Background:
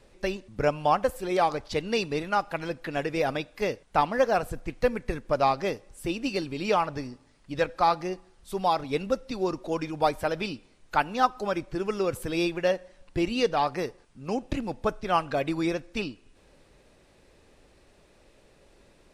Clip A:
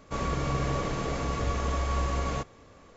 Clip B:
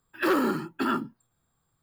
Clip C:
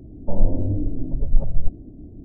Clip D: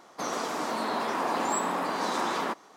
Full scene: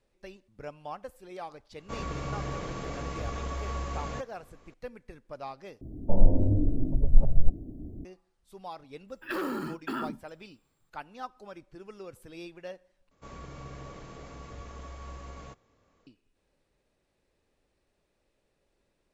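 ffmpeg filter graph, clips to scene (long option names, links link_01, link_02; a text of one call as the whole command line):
ffmpeg -i bed.wav -i cue0.wav -i cue1.wav -i cue2.wav -filter_complex "[1:a]asplit=2[link_01][link_02];[0:a]volume=-17dB[link_03];[3:a]crystalizer=i=1.5:c=0[link_04];[2:a]acompressor=threshold=-27dB:ratio=6:attack=3.2:release=140:knee=1:detection=peak[link_05];[link_03]asplit=3[link_06][link_07][link_08];[link_06]atrim=end=5.814[link_09];[link_04]atrim=end=2.24,asetpts=PTS-STARTPTS,volume=-1.5dB[link_10];[link_07]atrim=start=8.046:end=13.114[link_11];[link_02]atrim=end=2.96,asetpts=PTS-STARTPTS,volume=-15dB[link_12];[link_08]atrim=start=16.066[link_13];[link_01]atrim=end=2.96,asetpts=PTS-STARTPTS,volume=-6dB,afade=type=in:duration=0.004:curve=hsin,afade=type=out:start_time=2.956:duration=0.004:curve=hsin,adelay=1780[link_14];[link_05]atrim=end=1.82,asetpts=PTS-STARTPTS,volume=-2dB,afade=type=in:duration=0.004:curve=hsin,afade=type=out:start_time=1.816:duration=0.004:curve=hsin,adelay=9080[link_15];[link_09][link_10]acrossfade=duration=0.004:curve1=hsin:curve2=hsin[link_16];[link_16][link_11]acrossfade=duration=0.004:curve1=hsin:curve2=hsin[link_17];[link_17][link_12]acrossfade=duration=0.004:curve1=hsin:curve2=hsin[link_18];[link_18][link_13]acrossfade=duration=0.004:curve1=hsin:curve2=hsin[link_19];[link_19][link_14][link_15]amix=inputs=3:normalize=0" out.wav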